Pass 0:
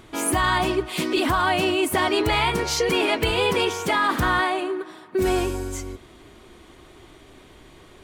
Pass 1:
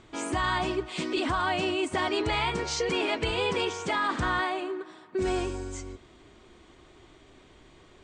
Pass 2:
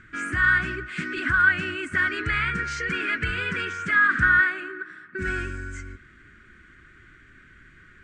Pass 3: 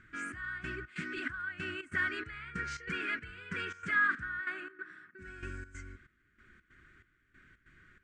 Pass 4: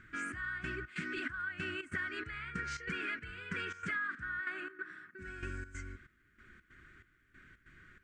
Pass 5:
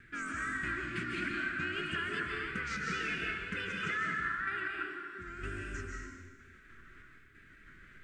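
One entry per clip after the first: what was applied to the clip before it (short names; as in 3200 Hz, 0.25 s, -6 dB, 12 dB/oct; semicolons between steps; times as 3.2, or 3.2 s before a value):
steep low-pass 8600 Hz 72 dB/oct; gain -6.5 dB
EQ curve 200 Hz 0 dB, 880 Hz -25 dB, 1500 Hz +14 dB, 3600 Hz -12 dB, 10000 Hz -8 dB; gain +3.5 dB
step gate "xxx...xx." 141 bpm -12 dB; gain -9 dB
compressor 6:1, threshold -37 dBFS, peak gain reduction 12 dB; gain +2 dB
wow and flutter 130 cents; digital reverb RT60 1.3 s, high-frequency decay 1×, pre-delay 0.105 s, DRR -1.5 dB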